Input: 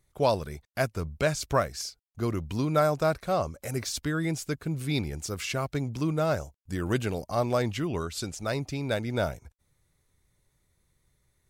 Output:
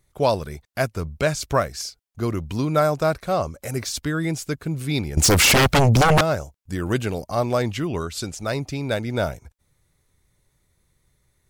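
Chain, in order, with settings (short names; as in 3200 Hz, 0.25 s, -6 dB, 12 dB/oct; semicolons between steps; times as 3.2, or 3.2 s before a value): 5.17–6.21 sine folder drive 15 dB, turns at -16 dBFS; gain +4.5 dB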